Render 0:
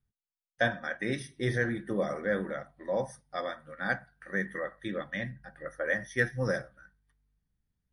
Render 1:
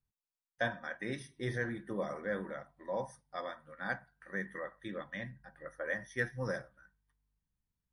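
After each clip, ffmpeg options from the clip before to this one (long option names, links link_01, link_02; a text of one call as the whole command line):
ffmpeg -i in.wav -af "equalizer=frequency=980:width=4.1:gain=8,volume=-7dB" out.wav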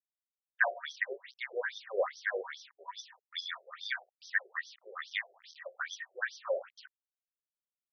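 ffmpeg -i in.wav -af "acrusher=bits=9:mix=0:aa=0.000001,crystalizer=i=5.5:c=0,afftfilt=real='re*between(b*sr/1024,510*pow(4500/510,0.5+0.5*sin(2*PI*2.4*pts/sr))/1.41,510*pow(4500/510,0.5+0.5*sin(2*PI*2.4*pts/sr))*1.41)':imag='im*between(b*sr/1024,510*pow(4500/510,0.5+0.5*sin(2*PI*2.4*pts/sr))/1.41,510*pow(4500/510,0.5+0.5*sin(2*PI*2.4*pts/sr))*1.41)':win_size=1024:overlap=0.75,volume=7dB" out.wav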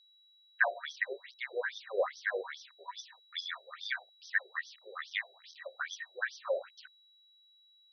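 ffmpeg -i in.wav -af "aeval=exprs='val(0)+0.000794*sin(2*PI*3900*n/s)':channel_layout=same" out.wav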